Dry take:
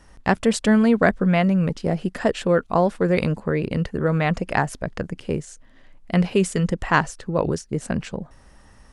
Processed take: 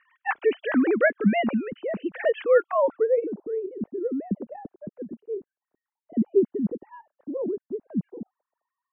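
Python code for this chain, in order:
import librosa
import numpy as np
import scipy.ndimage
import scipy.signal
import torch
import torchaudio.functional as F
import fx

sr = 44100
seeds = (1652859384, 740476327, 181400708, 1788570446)

y = fx.sine_speech(x, sr)
y = fx.filter_sweep_lowpass(y, sr, from_hz=2800.0, to_hz=320.0, start_s=2.55, end_s=3.46, q=1.1)
y = y * 10.0 ** (-4.0 / 20.0)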